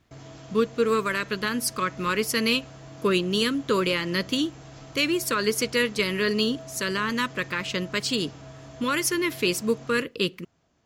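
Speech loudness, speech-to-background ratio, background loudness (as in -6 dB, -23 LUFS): -25.5 LUFS, 19.0 dB, -44.5 LUFS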